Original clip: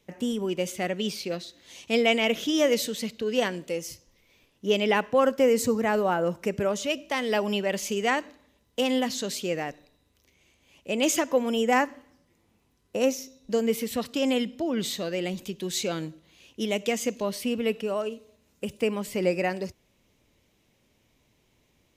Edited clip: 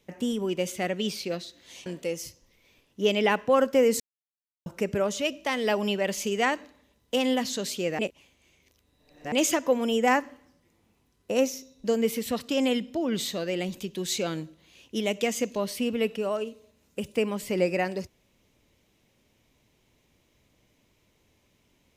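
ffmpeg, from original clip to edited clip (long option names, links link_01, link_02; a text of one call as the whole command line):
ffmpeg -i in.wav -filter_complex "[0:a]asplit=6[link_01][link_02][link_03][link_04][link_05][link_06];[link_01]atrim=end=1.862[link_07];[link_02]atrim=start=3.508:end=5.65,asetpts=PTS-STARTPTS,afade=type=out:start_time=2.138:duration=0.004:curve=hsin[link_08];[link_03]atrim=start=5.65:end=6.31,asetpts=PTS-STARTPTS,volume=0[link_09];[link_04]atrim=start=6.31:end=9.642,asetpts=PTS-STARTPTS,afade=type=in:duration=0.004:curve=hsin[link_10];[link_05]atrim=start=9.638:end=10.972,asetpts=PTS-STARTPTS,areverse[link_11];[link_06]atrim=start=10.968[link_12];[link_08][link_09][link_10]concat=n=3:v=0:a=1[link_13];[link_07][link_13]acrossfade=duration=0.004:curve1=hsin:curve2=hsin[link_14];[link_14][link_11]acrossfade=duration=0.004:curve1=hsin:curve2=hsin[link_15];[link_15][link_12]acrossfade=duration=0.004:curve1=hsin:curve2=hsin" out.wav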